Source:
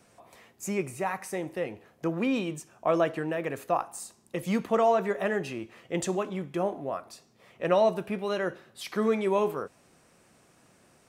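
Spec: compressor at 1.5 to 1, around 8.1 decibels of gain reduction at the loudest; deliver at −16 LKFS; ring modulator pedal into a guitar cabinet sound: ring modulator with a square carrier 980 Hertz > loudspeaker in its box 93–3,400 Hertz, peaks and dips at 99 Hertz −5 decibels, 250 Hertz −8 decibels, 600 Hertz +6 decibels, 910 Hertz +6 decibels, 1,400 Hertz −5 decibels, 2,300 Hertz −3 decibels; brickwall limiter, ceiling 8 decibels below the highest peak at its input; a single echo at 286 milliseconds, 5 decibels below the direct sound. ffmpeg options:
ffmpeg -i in.wav -af "acompressor=threshold=-42dB:ratio=1.5,alimiter=level_in=3dB:limit=-24dB:level=0:latency=1,volume=-3dB,aecho=1:1:286:0.562,aeval=exprs='val(0)*sgn(sin(2*PI*980*n/s))':channel_layout=same,highpass=93,equalizer=frequency=99:width_type=q:width=4:gain=-5,equalizer=frequency=250:width_type=q:width=4:gain=-8,equalizer=frequency=600:width_type=q:width=4:gain=6,equalizer=frequency=910:width_type=q:width=4:gain=6,equalizer=frequency=1400:width_type=q:width=4:gain=-5,equalizer=frequency=2300:width_type=q:width=4:gain=-3,lowpass=frequency=3400:width=0.5412,lowpass=frequency=3400:width=1.3066,volume=21dB" out.wav

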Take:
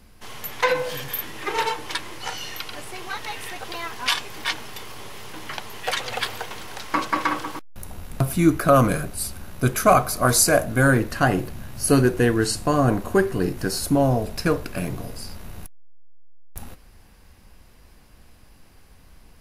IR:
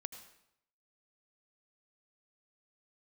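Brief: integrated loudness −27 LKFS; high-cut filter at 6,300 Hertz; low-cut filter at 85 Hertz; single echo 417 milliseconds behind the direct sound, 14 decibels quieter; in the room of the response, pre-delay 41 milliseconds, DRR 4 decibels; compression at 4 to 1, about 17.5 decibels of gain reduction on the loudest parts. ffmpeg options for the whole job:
-filter_complex "[0:a]highpass=85,lowpass=6300,acompressor=threshold=-33dB:ratio=4,aecho=1:1:417:0.2,asplit=2[link_01][link_02];[1:a]atrim=start_sample=2205,adelay=41[link_03];[link_02][link_03]afir=irnorm=-1:irlink=0,volume=-1dB[link_04];[link_01][link_04]amix=inputs=2:normalize=0,volume=7.5dB"

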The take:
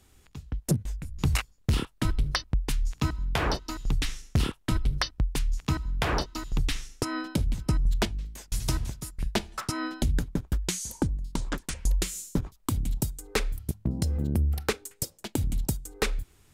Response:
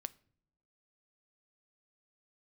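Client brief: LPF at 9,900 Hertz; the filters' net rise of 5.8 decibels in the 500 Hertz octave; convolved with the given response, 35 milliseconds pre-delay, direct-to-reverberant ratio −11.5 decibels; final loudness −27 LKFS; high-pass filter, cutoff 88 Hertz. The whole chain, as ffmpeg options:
-filter_complex "[0:a]highpass=88,lowpass=9900,equalizer=frequency=500:width_type=o:gain=7.5,asplit=2[link_01][link_02];[1:a]atrim=start_sample=2205,adelay=35[link_03];[link_02][link_03]afir=irnorm=-1:irlink=0,volume=14.5dB[link_04];[link_01][link_04]amix=inputs=2:normalize=0,volume=-7.5dB"

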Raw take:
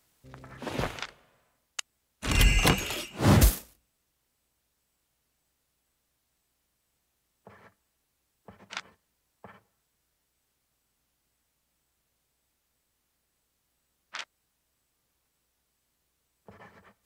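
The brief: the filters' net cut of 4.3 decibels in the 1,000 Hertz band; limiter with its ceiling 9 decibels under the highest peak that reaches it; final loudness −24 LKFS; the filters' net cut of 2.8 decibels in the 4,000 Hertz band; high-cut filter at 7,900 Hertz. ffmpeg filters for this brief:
ffmpeg -i in.wav -af "lowpass=7900,equalizer=frequency=1000:width_type=o:gain=-5.5,equalizer=frequency=4000:width_type=o:gain=-3.5,volume=9.5dB,alimiter=limit=-9dB:level=0:latency=1" out.wav

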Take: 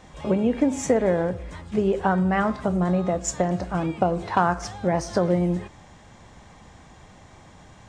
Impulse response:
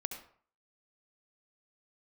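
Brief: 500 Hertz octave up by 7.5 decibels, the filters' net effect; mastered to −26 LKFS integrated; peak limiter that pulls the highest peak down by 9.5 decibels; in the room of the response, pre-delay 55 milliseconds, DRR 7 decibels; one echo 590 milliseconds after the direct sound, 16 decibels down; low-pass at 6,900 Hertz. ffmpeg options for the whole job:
-filter_complex "[0:a]lowpass=6900,equalizer=frequency=500:width_type=o:gain=9,alimiter=limit=-11.5dB:level=0:latency=1,aecho=1:1:590:0.158,asplit=2[link_01][link_02];[1:a]atrim=start_sample=2205,adelay=55[link_03];[link_02][link_03]afir=irnorm=-1:irlink=0,volume=-7dB[link_04];[link_01][link_04]amix=inputs=2:normalize=0,volume=-4.5dB"

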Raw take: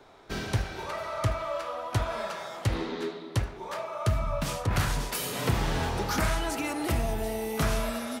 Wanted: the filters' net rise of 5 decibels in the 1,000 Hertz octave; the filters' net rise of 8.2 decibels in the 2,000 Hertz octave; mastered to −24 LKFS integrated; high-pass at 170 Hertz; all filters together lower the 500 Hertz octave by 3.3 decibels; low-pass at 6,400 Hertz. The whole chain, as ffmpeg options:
ffmpeg -i in.wav -af "highpass=170,lowpass=6400,equalizer=frequency=500:width_type=o:gain=-7.5,equalizer=frequency=1000:width_type=o:gain=5.5,equalizer=frequency=2000:width_type=o:gain=9,volume=5dB" out.wav

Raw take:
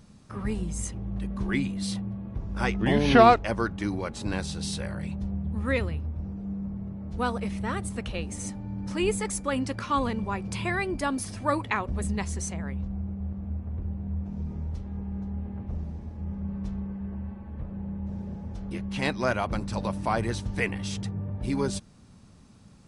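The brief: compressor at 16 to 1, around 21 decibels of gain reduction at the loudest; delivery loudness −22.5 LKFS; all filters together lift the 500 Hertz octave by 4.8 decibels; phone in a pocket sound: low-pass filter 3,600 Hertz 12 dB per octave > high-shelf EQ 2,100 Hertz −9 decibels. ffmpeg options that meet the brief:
ffmpeg -i in.wav -af "equalizer=frequency=500:width_type=o:gain=7,acompressor=threshold=-29dB:ratio=16,lowpass=3600,highshelf=frequency=2100:gain=-9,volume=13dB" out.wav

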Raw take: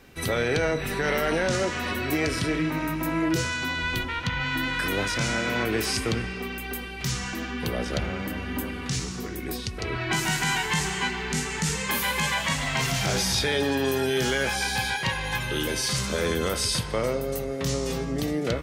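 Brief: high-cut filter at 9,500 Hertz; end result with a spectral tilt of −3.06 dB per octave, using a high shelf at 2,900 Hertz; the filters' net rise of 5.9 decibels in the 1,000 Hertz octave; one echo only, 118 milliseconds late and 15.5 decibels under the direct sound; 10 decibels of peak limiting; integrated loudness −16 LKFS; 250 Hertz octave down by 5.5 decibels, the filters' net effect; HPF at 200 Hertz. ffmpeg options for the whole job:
ffmpeg -i in.wav -af "highpass=200,lowpass=9500,equalizer=frequency=250:width_type=o:gain=-6,equalizer=frequency=1000:width_type=o:gain=6.5,highshelf=frequency=2900:gain=7.5,alimiter=limit=-18dB:level=0:latency=1,aecho=1:1:118:0.168,volume=11dB" out.wav

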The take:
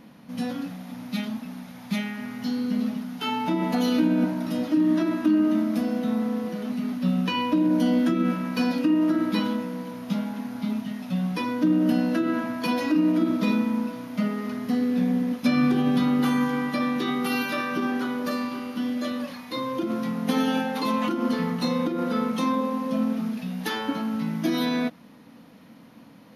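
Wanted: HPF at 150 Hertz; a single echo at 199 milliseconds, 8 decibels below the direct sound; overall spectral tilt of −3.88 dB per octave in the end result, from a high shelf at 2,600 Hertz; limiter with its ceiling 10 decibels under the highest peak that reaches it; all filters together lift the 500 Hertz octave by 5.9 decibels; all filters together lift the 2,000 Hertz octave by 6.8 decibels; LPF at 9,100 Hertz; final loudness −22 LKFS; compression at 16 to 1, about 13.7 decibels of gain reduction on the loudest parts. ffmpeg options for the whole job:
ffmpeg -i in.wav -af "highpass=150,lowpass=9100,equalizer=frequency=500:width_type=o:gain=6.5,equalizer=frequency=2000:width_type=o:gain=5.5,highshelf=frequency=2600:gain=6,acompressor=threshold=-29dB:ratio=16,alimiter=level_in=3dB:limit=-24dB:level=0:latency=1,volume=-3dB,aecho=1:1:199:0.398,volume=12.5dB" out.wav

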